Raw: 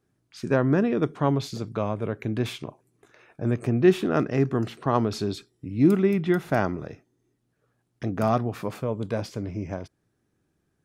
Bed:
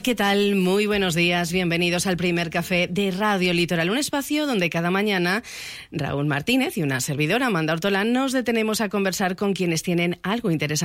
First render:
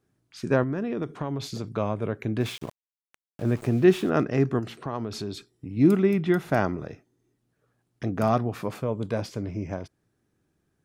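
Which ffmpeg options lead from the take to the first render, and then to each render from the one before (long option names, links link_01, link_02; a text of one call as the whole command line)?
ffmpeg -i in.wav -filter_complex "[0:a]asettb=1/sr,asplit=3[link_01][link_02][link_03];[link_01]atrim=end=0.634[link_04];[link_02]atrim=start=0.63:end=1.71,asetpts=PTS-STARTPTS,afade=type=in:duration=0.004:curve=qsin,afade=type=out:start_time=1.076:duration=0.004:curve=qsin,acompressor=threshold=-25dB:ratio=6:attack=3.2:release=140:knee=1:detection=peak[link_05];[link_03]atrim=start=1.706[link_06];[link_04][link_05]acrossfade=duration=0.004:curve1=hsin:curve2=qsin[link_07];[link_07][link_06]acrossfade=duration=0.004:curve1=qsin:curve2=hsin,asplit=3[link_08][link_09][link_10];[link_08]afade=type=out:start_time=2.39:duration=0.02[link_11];[link_09]aeval=exprs='val(0)*gte(abs(val(0)),0.00841)':channel_layout=same,afade=type=in:start_time=2.39:duration=0.02,afade=type=out:start_time=4.09:duration=0.02[link_12];[link_10]afade=type=in:start_time=4.09:duration=0.02[link_13];[link_11][link_12][link_13]amix=inputs=3:normalize=0,asettb=1/sr,asplit=3[link_14][link_15][link_16];[link_14]atrim=end=4.594[link_17];[link_15]atrim=start=4.59:end=5.77,asetpts=PTS-STARTPTS,afade=type=in:duration=0.004:curve=qsin,afade=type=out:start_time=1.176:duration=0.004:curve=qsin,acompressor=threshold=-32dB:ratio=2:attack=3.2:release=140:knee=1:detection=peak[link_18];[link_16]atrim=start=5.766[link_19];[link_17][link_18]acrossfade=duration=0.004:curve1=hsin:curve2=qsin[link_20];[link_20][link_19]acrossfade=duration=0.004:curve1=qsin:curve2=hsin" out.wav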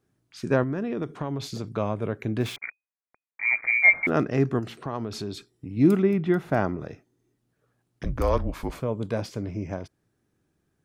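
ffmpeg -i in.wav -filter_complex "[0:a]asettb=1/sr,asplit=3[link_01][link_02][link_03];[link_01]atrim=end=2.564[link_04];[link_02]atrim=start=2.56:end=4.07,asetpts=PTS-STARTPTS,afade=type=in:duration=0.004:curve=qsin,afade=type=out:start_time=1.506:duration=0.004:curve=qsin,lowpass=frequency=2100:width_type=q:width=0.5098,lowpass=frequency=2100:width_type=q:width=0.6013,lowpass=frequency=2100:width_type=q:width=0.9,lowpass=frequency=2100:width_type=q:width=2.563,afreqshift=-2500[link_05];[link_03]atrim=start=4.066[link_06];[link_04][link_05]acrossfade=duration=0.004:curve1=hsin:curve2=qsin[link_07];[link_07][link_06]acrossfade=duration=0.004:curve1=qsin:curve2=hsin,asettb=1/sr,asplit=3[link_08][link_09][link_10];[link_08]atrim=end=6.024[link_11];[link_09]atrim=start=6.02:end=6.81,asetpts=PTS-STARTPTS,afade=type=in:duration=0.004:curve=qsin,afade=type=out:start_time=0.786:duration=0.004:curve=qsin,highshelf=frequency=2800:gain=-8[link_12];[link_10]atrim=start=6.806[link_13];[link_11][link_12]acrossfade=duration=0.004:curve1=hsin:curve2=qsin[link_14];[link_14][link_13]acrossfade=duration=0.004:curve1=qsin:curve2=hsin,asettb=1/sr,asplit=3[link_15][link_16][link_17];[link_15]atrim=end=8.044[link_18];[link_16]atrim=start=8.04:end=8.8,asetpts=PTS-STARTPTS,afade=type=in:duration=0.004:curve=qsin,afade=type=out:start_time=0.756:duration=0.004:curve=qsin,afreqshift=-150[link_19];[link_17]atrim=start=8.796[link_20];[link_18][link_19]acrossfade=duration=0.004:curve1=hsin:curve2=qsin[link_21];[link_21][link_20]acrossfade=duration=0.004:curve1=qsin:curve2=hsin" out.wav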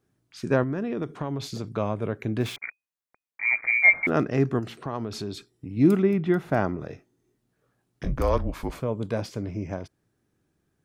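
ffmpeg -i in.wav -filter_complex "[0:a]asettb=1/sr,asplit=3[link_01][link_02][link_03];[link_01]atrim=end=6.874[link_04];[link_02]atrim=start=6.87:end=8.22,asetpts=PTS-STARTPTS,afade=type=in:duration=0.004:curve=qsin,afade=type=out:start_time=1.346:duration=0.004:curve=qsin,asplit=2[link_05][link_06];[link_06]adelay=22,volume=-6dB[link_07];[link_05][link_07]amix=inputs=2:normalize=0,atrim=end_sample=59535[link_08];[link_03]atrim=start=8.216[link_09];[link_04][link_08]acrossfade=duration=0.004:curve1=hsin:curve2=qsin[link_10];[link_10][link_09]acrossfade=duration=0.004:curve1=qsin:curve2=hsin" out.wav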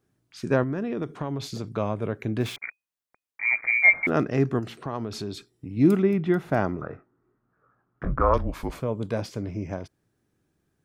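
ffmpeg -i in.wav -filter_complex "[0:a]asettb=1/sr,asplit=3[link_01][link_02][link_03];[link_01]atrim=end=6.814[link_04];[link_02]atrim=start=6.81:end=8.34,asetpts=PTS-STARTPTS,afade=type=in:duration=0.004:curve=qsin,afade=type=out:start_time=1.526:duration=0.004:curve=qsin,lowpass=frequency=1300:width_type=q:width=5[link_05];[link_03]atrim=start=8.336[link_06];[link_04][link_05]acrossfade=duration=0.004:curve1=hsin:curve2=qsin[link_07];[link_07][link_06]acrossfade=duration=0.004:curve1=qsin:curve2=hsin" out.wav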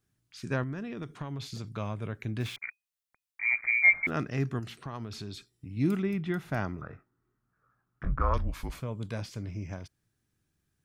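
ffmpeg -i in.wav -filter_complex "[0:a]acrossover=split=3400[link_01][link_02];[link_02]acompressor=threshold=-44dB:ratio=4:attack=1:release=60[link_03];[link_01][link_03]amix=inputs=2:normalize=0,equalizer=frequency=470:width=0.43:gain=-12" out.wav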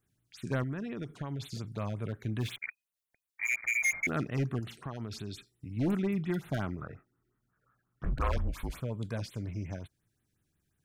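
ffmpeg -i in.wav -af "asoftclip=type=hard:threshold=-25dB,afftfilt=real='re*(1-between(b*sr/1024,900*pow(6200/900,0.5+0.5*sin(2*PI*5.6*pts/sr))/1.41,900*pow(6200/900,0.5+0.5*sin(2*PI*5.6*pts/sr))*1.41))':imag='im*(1-between(b*sr/1024,900*pow(6200/900,0.5+0.5*sin(2*PI*5.6*pts/sr))/1.41,900*pow(6200/900,0.5+0.5*sin(2*PI*5.6*pts/sr))*1.41))':win_size=1024:overlap=0.75" out.wav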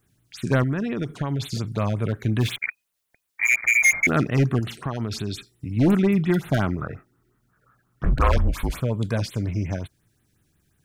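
ffmpeg -i in.wav -af "volume=11.5dB" out.wav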